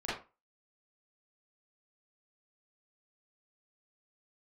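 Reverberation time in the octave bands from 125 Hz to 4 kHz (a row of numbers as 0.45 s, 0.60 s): 0.30 s, 0.30 s, 0.30 s, 0.30 s, 0.25 s, 0.20 s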